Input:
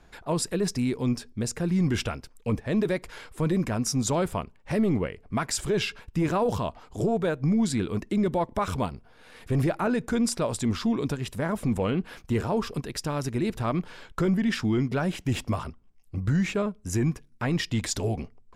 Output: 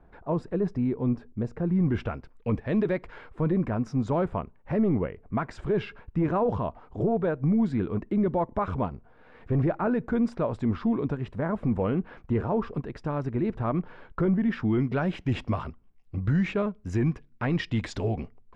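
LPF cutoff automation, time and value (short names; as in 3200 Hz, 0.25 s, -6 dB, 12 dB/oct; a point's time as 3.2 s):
1.68 s 1100 Hz
2.67 s 2600 Hz
3.43 s 1500 Hz
14.5 s 1500 Hz
15 s 2800 Hz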